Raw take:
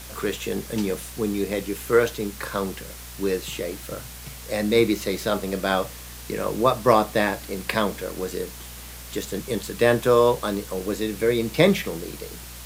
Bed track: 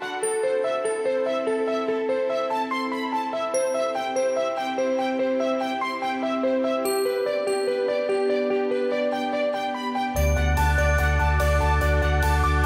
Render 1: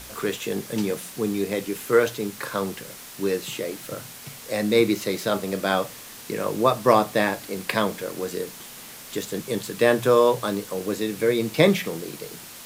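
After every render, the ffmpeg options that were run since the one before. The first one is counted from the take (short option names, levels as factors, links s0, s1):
-af "bandreject=f=60:t=h:w=4,bandreject=f=120:t=h:w=4,bandreject=f=180:t=h:w=4"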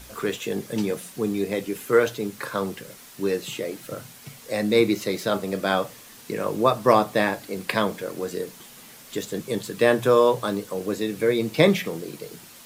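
-af "afftdn=nr=6:nf=-42"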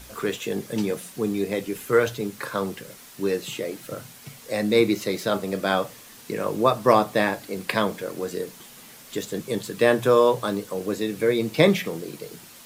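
-filter_complex "[0:a]asettb=1/sr,asplit=3[s0][s1][s2];[s0]atrim=end=1.544[s3];[s1]atrim=start=1.54:end=2.21,asetpts=PTS-STARTPTS,afade=t=in:d=0.004:c=qsin,afade=t=out:st=0.666:d=0.004:c=qsin,asubboost=boost=10:cutoff=150[s4];[s2]atrim=start=2.206[s5];[s3][s4]acrossfade=d=0.004:c1=hsin:c2=qsin[s6];[s6][s5]acrossfade=d=0.004:c1=qsin:c2=hsin"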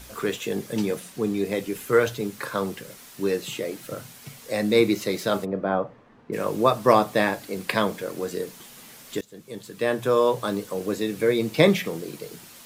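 -filter_complex "[0:a]asettb=1/sr,asplit=3[s0][s1][s2];[s0]atrim=end=0.994[s3];[s1]atrim=start=0.99:end=1.45,asetpts=PTS-STARTPTS,afade=t=in:d=0.004:c=qsin,afade=t=out:st=0.456:d=0.004:c=qsin,highshelf=f=8700:g=-5.5[s4];[s2]atrim=start=1.446[s5];[s3][s4]acrossfade=d=0.004:c1=hsin:c2=qsin[s6];[s6][s5]acrossfade=d=0.004:c1=qsin:c2=hsin,asplit=3[s7][s8][s9];[s7]afade=t=out:st=5.44:d=0.02[s10];[s8]lowpass=1100,afade=t=in:st=5.44:d=0.02,afade=t=out:st=6.32:d=0.02[s11];[s9]afade=t=in:st=6.32:d=0.02[s12];[s10][s11][s12]amix=inputs=3:normalize=0,asplit=2[s13][s14];[s13]atrim=end=9.21,asetpts=PTS-STARTPTS,afade=t=out:st=9.206:d=0.004:c=hsin:silence=0.1[s15];[s14]atrim=start=9.21,asetpts=PTS-STARTPTS,afade=t=in:d=1.4:silence=0.1[s16];[s15][s16]concat=n=2:v=0:a=1"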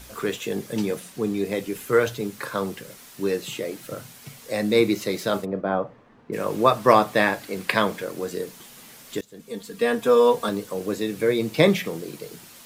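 -filter_complex "[0:a]asettb=1/sr,asplit=3[s0][s1][s2];[s0]atrim=end=5.324[s3];[s1]atrim=start=5.32:end=5.75,asetpts=PTS-STARTPTS,afade=t=in:d=0.004:c=qsin,afade=t=out:st=0.426:d=0.004:c=qsin,agate=range=0.0224:threshold=0.0251:ratio=3:release=100:detection=peak[s4];[s2]atrim=start=5.746[s5];[s3][s4]acrossfade=d=0.004:c1=hsin:c2=qsin[s6];[s6][s5]acrossfade=d=0.004:c1=qsin:c2=hsin,asettb=1/sr,asplit=3[s7][s8][s9];[s7]atrim=end=6.504[s10];[s8]atrim=start=6.5:end=8.05,asetpts=PTS-STARTPTS,afade=t=in:d=0.004:c=qsin,afade=t=out:st=1.546:d=0.004:c=qsin,equalizer=f=1800:w=0.64:g=4[s11];[s9]atrim=start=8.046[s12];[s10][s11]acrossfade=d=0.004:c1=hsin:c2=qsin[s13];[s13][s12]acrossfade=d=0.004:c1=qsin:c2=hsin,asettb=1/sr,asplit=3[s14][s15][s16];[s14]atrim=end=9.394[s17];[s15]atrim=start=9.39:end=10.49,asetpts=PTS-STARTPTS,afade=t=in:d=0.004:c=qsin,afade=t=out:st=1.096:d=0.004:c=qsin,aecho=1:1:4.3:0.85,atrim=end_sample=48510[s18];[s16]atrim=start=10.486[s19];[s17][s18]acrossfade=d=0.004:c1=hsin:c2=qsin[s20];[s20][s19]acrossfade=d=0.004:c1=qsin:c2=hsin"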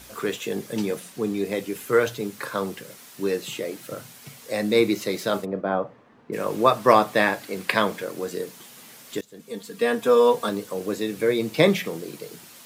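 -af "highpass=f=120:p=1"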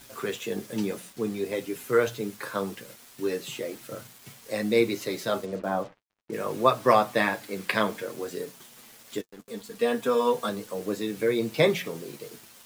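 -af "acrusher=bits=6:mix=0:aa=0.5,flanger=delay=7.1:depth=3:regen=-30:speed=0.59:shape=triangular"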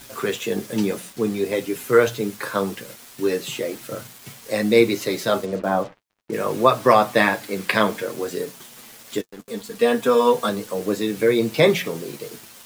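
-af "volume=2.24,alimiter=limit=0.708:level=0:latency=1"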